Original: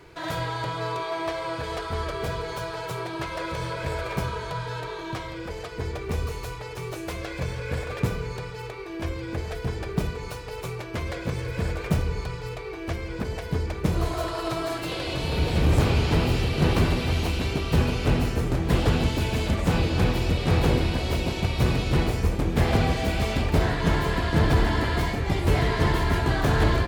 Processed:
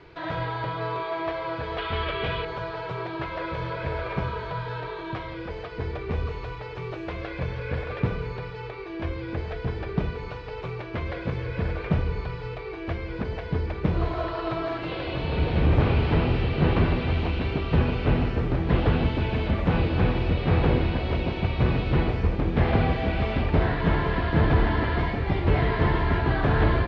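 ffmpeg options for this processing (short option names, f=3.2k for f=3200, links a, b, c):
-filter_complex "[0:a]asettb=1/sr,asplit=3[a][b][c];[a]atrim=end=1.784[d];[b]atrim=start=1.78:end=2.45,asetpts=PTS-STARTPTS,afade=t=in:d=0.004:c=qsin,afade=t=out:st=0.666:d=0.004:c=qsin,equalizer=f=3k:w=1.2:g=14[e];[c]atrim=start=2.446[f];[d][e]acrossfade=d=0.004:c1=hsin:c2=qsin[g];[g][f]acrossfade=d=0.004:c1=qsin:c2=hsin,acrossover=split=3200[h][i];[i]acompressor=threshold=-52dB:ratio=4:attack=1:release=60[j];[h][j]amix=inputs=2:normalize=0,lowpass=f=4.5k:w=0.5412,lowpass=f=4.5k:w=1.3066"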